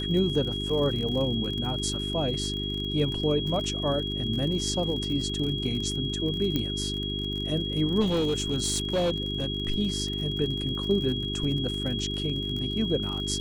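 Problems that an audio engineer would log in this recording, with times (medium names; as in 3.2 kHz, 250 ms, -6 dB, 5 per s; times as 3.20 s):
crackle 51 per s -33 dBFS
hum 50 Hz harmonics 8 -33 dBFS
whine 3.3 kHz -32 dBFS
6.56 s: pop -14 dBFS
8.00–9.46 s: clipped -21 dBFS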